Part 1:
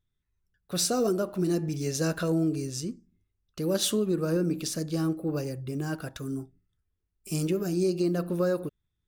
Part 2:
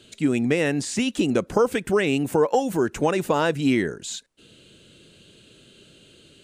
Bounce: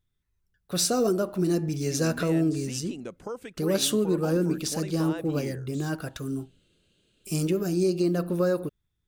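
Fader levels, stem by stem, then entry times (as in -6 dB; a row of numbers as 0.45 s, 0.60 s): +2.0 dB, -16.5 dB; 0.00 s, 1.70 s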